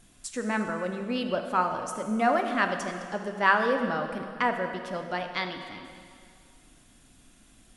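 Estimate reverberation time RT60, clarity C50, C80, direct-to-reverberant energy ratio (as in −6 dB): 2.3 s, 6.5 dB, 7.5 dB, 5.0 dB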